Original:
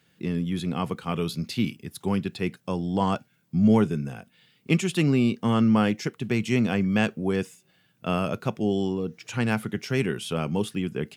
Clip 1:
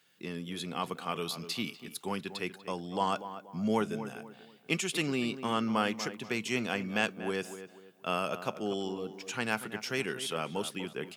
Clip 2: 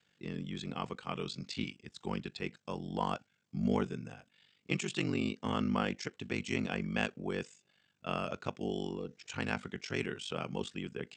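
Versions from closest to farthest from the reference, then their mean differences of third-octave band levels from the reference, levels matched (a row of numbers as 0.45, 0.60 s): 2, 1; 4.5, 7.5 dB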